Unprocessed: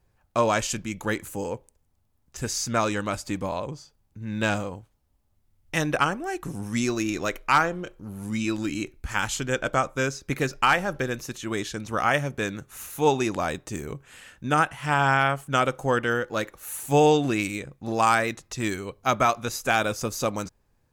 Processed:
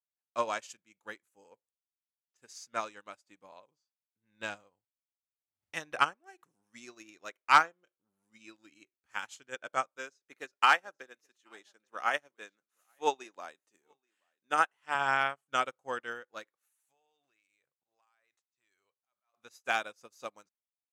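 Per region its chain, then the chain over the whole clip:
0:04.23–0:06.52: parametric band 84 Hz +6.5 dB 1.2 octaves + background raised ahead of every attack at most 110 dB per second
0:09.97–0:14.95: high-pass filter 240 Hz + notch filter 2,300 Hz, Q 28 + single-tap delay 830 ms −18 dB
0:16.67–0:19.34: parametric band 220 Hz −14 dB 1.6 octaves + downward compressor 8 to 1, threshold −36 dBFS + volume swells 171 ms
whole clip: meter weighting curve A; expander for the loud parts 2.5 to 1, over −40 dBFS

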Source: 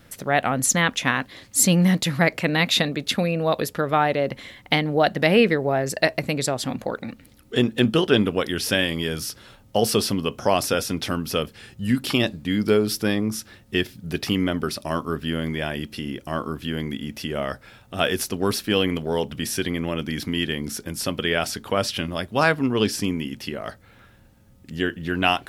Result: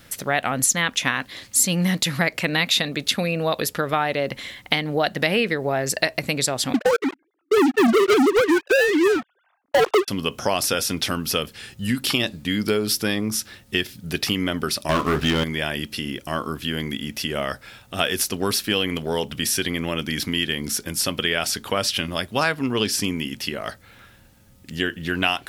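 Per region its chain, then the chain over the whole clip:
0:06.74–0:10.08: three sine waves on the formant tracks + low-pass filter 1,300 Hz + leveller curve on the samples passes 5
0:14.89–0:15.44: low-pass filter 3,300 Hz 6 dB per octave + double-tracking delay 27 ms −10.5 dB + leveller curve on the samples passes 3
whole clip: tilt shelving filter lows −4 dB, about 1,500 Hz; downward compressor 2.5 to 1, threshold −23 dBFS; level +4 dB

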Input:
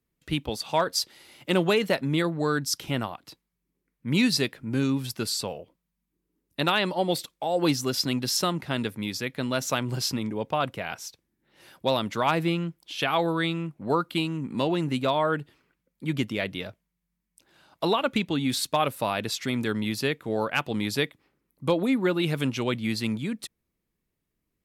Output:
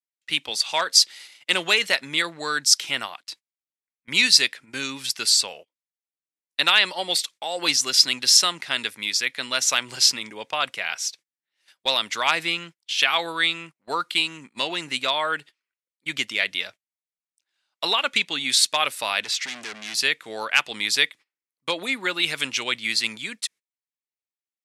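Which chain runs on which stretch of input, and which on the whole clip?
0:19.23–0:19.95: high-shelf EQ 7,500 Hz −9.5 dB + upward compression, threshold −34 dBFS + hard clipping −32 dBFS
whole clip: meter weighting curve ITU-R 468; noise gate −42 dBFS, range −24 dB; parametric band 2,000 Hz +4 dB 0.82 octaves

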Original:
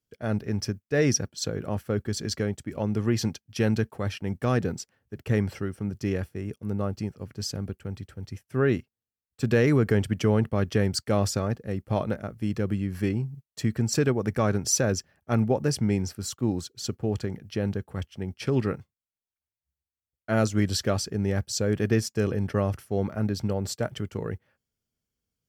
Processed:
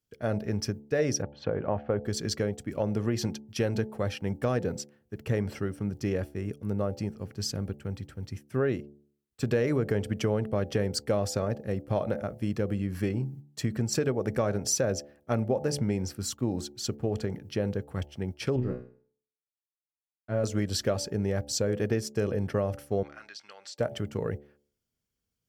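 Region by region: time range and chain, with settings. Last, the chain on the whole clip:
0:01.22–0:02.03: low-pass filter 2,800 Hz 24 dB per octave + parametric band 880 Hz +7 dB 0.81 octaves
0:18.56–0:20.44: mu-law and A-law mismatch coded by A + spectral tilt −3 dB per octave + tuned comb filter 62 Hz, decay 0.43 s, mix 90%
0:23.03–0:23.78: flat-topped band-pass 3,000 Hz, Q 0.66 + downward compressor, threshold −39 dBFS
whole clip: hum removal 72.25 Hz, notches 12; dynamic equaliser 560 Hz, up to +7 dB, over −40 dBFS, Q 1.8; downward compressor 3 to 1, threshold −25 dBFS

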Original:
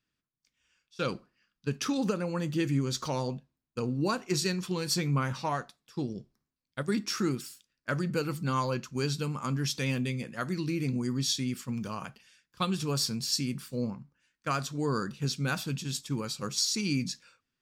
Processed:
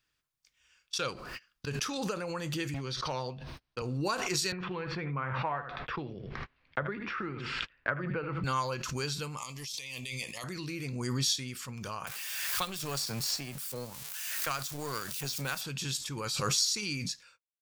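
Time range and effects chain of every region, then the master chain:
0:02.74–0:03.82: Savitzky-Golay smoothing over 15 samples + hard clipping −23 dBFS + multiband upward and downward compressor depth 40%
0:04.52–0:08.44: low-pass filter 2,300 Hz 24 dB per octave + single-tap delay 77 ms −12.5 dB + multiband upward and downward compressor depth 100%
0:09.37–0:10.44: tilt shelving filter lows −8 dB, about 1,300 Hz + compressor whose output falls as the input rises −39 dBFS + Butterworth band-reject 1,500 Hz, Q 1.7
0:12.07–0:15.61: spike at every zero crossing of −32 dBFS + power curve on the samples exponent 1.4 + multiband upward and downward compressor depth 70%
whole clip: noise gate −60 dBFS, range −34 dB; parametric band 220 Hz −13 dB 1.6 octaves; background raised ahead of every attack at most 25 dB per second

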